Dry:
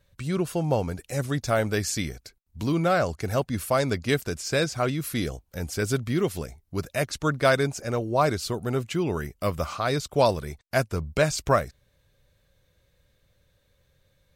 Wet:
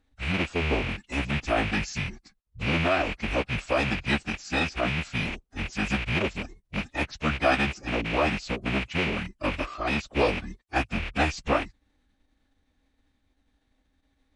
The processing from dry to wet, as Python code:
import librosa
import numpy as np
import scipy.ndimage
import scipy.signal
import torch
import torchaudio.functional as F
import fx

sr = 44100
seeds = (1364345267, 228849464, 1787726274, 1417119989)

y = fx.rattle_buzz(x, sr, strikes_db=-32.0, level_db=-14.0)
y = fx.lowpass(y, sr, hz=3800.0, slope=6)
y = fx.pitch_keep_formants(y, sr, semitones=-12.0)
y = y * librosa.db_to_amplitude(-1.5)